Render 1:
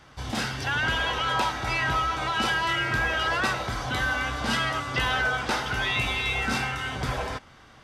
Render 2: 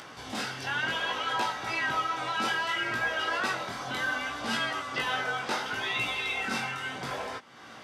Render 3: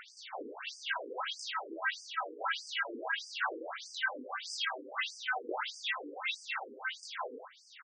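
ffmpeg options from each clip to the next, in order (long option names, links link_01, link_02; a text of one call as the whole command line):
ffmpeg -i in.wav -af "acompressor=mode=upward:threshold=-30dB:ratio=2.5,flanger=delay=17:depth=5.7:speed=0.66,highpass=200,volume=-1dB" out.wav
ffmpeg -i in.wav -af "aecho=1:1:82:0.562,afftfilt=real='re*between(b*sr/1024,350*pow(6700/350,0.5+0.5*sin(2*PI*1.6*pts/sr))/1.41,350*pow(6700/350,0.5+0.5*sin(2*PI*1.6*pts/sr))*1.41)':imag='im*between(b*sr/1024,350*pow(6700/350,0.5+0.5*sin(2*PI*1.6*pts/sr))/1.41,350*pow(6700/350,0.5+0.5*sin(2*PI*1.6*pts/sr))*1.41)':win_size=1024:overlap=0.75" out.wav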